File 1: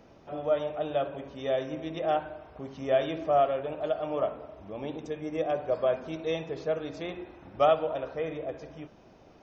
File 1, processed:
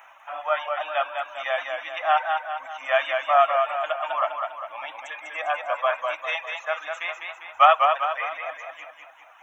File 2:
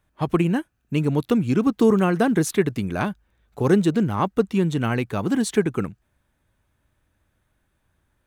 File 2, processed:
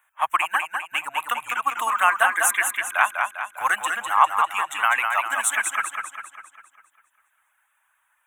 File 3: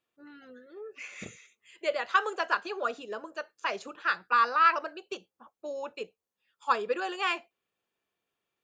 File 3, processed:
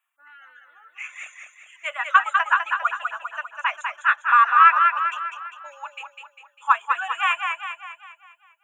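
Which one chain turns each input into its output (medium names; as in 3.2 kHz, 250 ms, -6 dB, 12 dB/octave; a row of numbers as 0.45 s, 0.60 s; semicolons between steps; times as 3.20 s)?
Butterworth band-stop 4.7 kHz, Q 1; reverb removal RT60 1.7 s; inverse Chebyshev high-pass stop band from 450 Hz, stop band 40 dB; modulated delay 200 ms, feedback 50%, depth 59 cents, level -5 dB; peak normalisation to -2 dBFS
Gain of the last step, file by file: +16.5 dB, +11.0 dB, +9.5 dB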